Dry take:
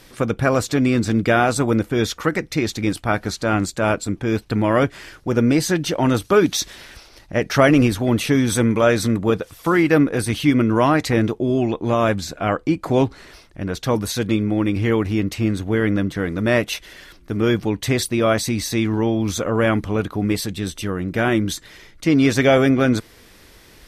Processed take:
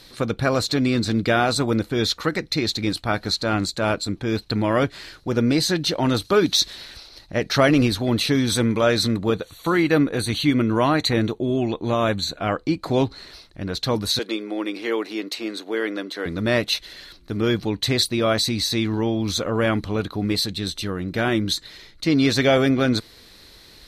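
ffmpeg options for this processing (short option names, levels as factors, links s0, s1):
-filter_complex "[0:a]asplit=3[s0][s1][s2];[s0]afade=t=out:st=9.32:d=0.02[s3];[s1]asuperstop=centerf=5100:order=20:qfactor=5.2,afade=t=in:st=9.32:d=0.02,afade=t=out:st=12.39:d=0.02[s4];[s2]afade=t=in:st=12.39:d=0.02[s5];[s3][s4][s5]amix=inputs=3:normalize=0,asettb=1/sr,asplit=3[s6][s7][s8];[s6]atrim=end=14.194[s9];[s7]atrim=start=14.19:end=16.26,asetpts=PTS-STARTPTS,afade=t=in:d=0.004:c=qsin,afade=t=out:st=2.066:d=0.004:c=qsin,highpass=f=320:w=0.5412,highpass=f=320:w=1.3066[s10];[s8]atrim=start=16.256[s11];[s9][s10]acrossfade=d=0.004:c1=hsin:c2=qsin[s12];[s12][s11]acrossfade=d=0.004:c1=qsin:c2=hsin,equalizer=f=4100:w=4.1:g=15,volume=0.708"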